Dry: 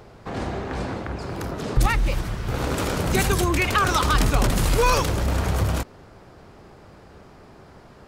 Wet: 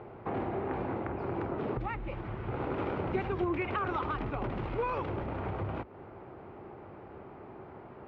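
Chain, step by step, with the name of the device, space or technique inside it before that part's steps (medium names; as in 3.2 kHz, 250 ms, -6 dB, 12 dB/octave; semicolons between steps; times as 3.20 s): bass amplifier (compression 3:1, threshold -31 dBFS, peak gain reduction 13.5 dB; cabinet simulation 63–2400 Hz, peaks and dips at 65 Hz -8 dB, 170 Hz -4 dB, 360 Hz +6 dB, 830 Hz +4 dB, 1.7 kHz -5 dB); trim -1.5 dB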